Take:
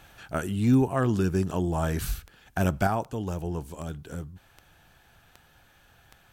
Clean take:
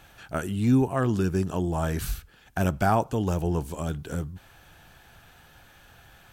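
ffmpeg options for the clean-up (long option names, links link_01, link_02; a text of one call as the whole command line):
ffmpeg -i in.wav -af "adeclick=threshold=4,asetnsamples=nb_out_samples=441:pad=0,asendcmd='2.87 volume volume 5.5dB',volume=0dB" out.wav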